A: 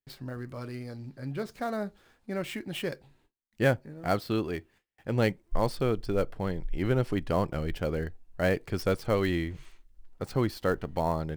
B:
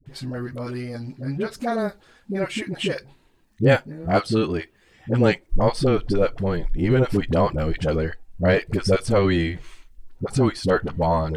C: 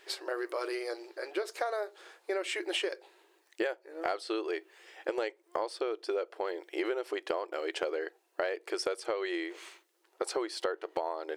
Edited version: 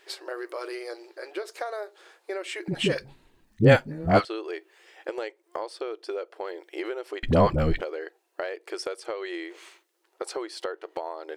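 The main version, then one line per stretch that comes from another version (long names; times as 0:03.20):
C
0:02.68–0:04.25: punch in from B
0:07.23–0:07.81: punch in from B
not used: A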